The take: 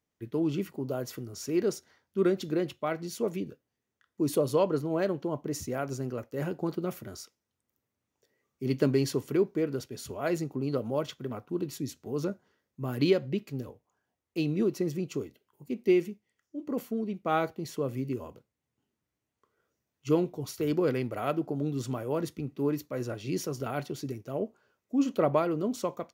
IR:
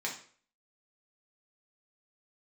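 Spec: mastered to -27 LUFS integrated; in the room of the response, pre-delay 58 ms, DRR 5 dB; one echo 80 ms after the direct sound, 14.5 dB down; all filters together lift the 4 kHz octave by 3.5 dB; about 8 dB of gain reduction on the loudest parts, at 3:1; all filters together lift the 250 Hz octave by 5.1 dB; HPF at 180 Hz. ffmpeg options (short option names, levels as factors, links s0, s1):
-filter_complex "[0:a]highpass=180,equalizer=f=250:t=o:g=8,equalizer=f=4000:t=o:g=4.5,acompressor=threshold=0.0501:ratio=3,aecho=1:1:80:0.188,asplit=2[s0][s1];[1:a]atrim=start_sample=2205,adelay=58[s2];[s1][s2]afir=irnorm=-1:irlink=0,volume=0.355[s3];[s0][s3]amix=inputs=2:normalize=0,volume=1.58"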